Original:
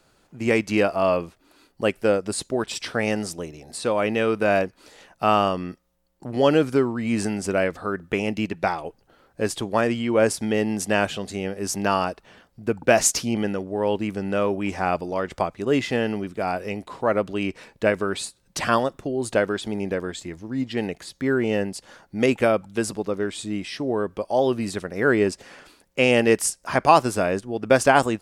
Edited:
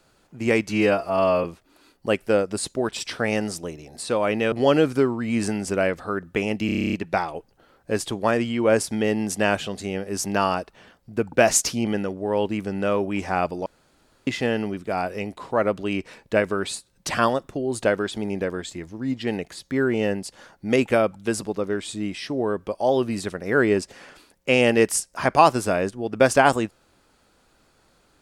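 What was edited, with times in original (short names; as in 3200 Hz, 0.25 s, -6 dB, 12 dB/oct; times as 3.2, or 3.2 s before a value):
0.69–1.19 stretch 1.5×
4.27–6.29 cut
8.43 stutter 0.03 s, 10 plays
15.16–15.77 room tone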